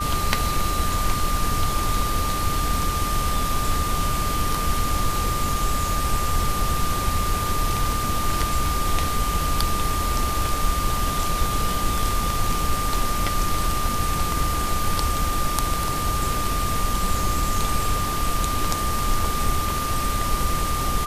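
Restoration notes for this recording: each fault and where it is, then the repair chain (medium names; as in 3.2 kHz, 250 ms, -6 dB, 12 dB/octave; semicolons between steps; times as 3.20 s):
whine 1.2 kHz -26 dBFS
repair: band-stop 1.2 kHz, Q 30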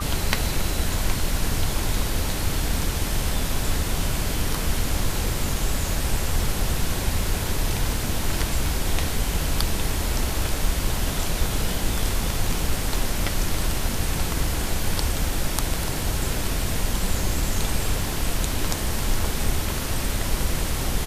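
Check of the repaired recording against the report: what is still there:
nothing left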